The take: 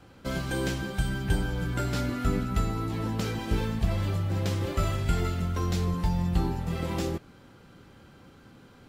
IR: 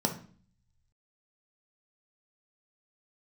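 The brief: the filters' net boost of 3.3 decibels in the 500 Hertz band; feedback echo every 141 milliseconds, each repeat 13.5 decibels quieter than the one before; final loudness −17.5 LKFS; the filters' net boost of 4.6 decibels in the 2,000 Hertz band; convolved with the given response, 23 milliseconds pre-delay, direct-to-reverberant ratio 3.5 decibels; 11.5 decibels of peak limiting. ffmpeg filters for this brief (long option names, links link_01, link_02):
-filter_complex "[0:a]equalizer=frequency=500:width_type=o:gain=4,equalizer=frequency=2000:width_type=o:gain=6,alimiter=limit=-23.5dB:level=0:latency=1,aecho=1:1:141|282:0.211|0.0444,asplit=2[link_01][link_02];[1:a]atrim=start_sample=2205,adelay=23[link_03];[link_02][link_03]afir=irnorm=-1:irlink=0,volume=-11dB[link_04];[link_01][link_04]amix=inputs=2:normalize=0,volume=10.5dB"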